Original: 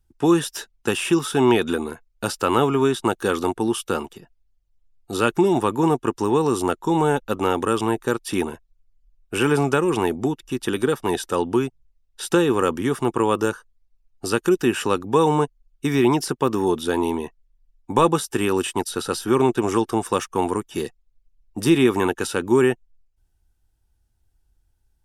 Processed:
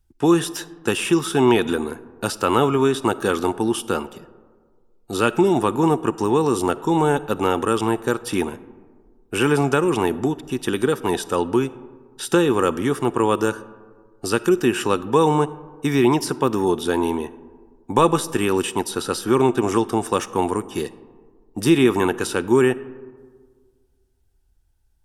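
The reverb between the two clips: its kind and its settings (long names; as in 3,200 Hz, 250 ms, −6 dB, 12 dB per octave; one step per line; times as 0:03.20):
comb and all-pass reverb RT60 1.7 s, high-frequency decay 0.35×, pre-delay 10 ms, DRR 17 dB
level +1 dB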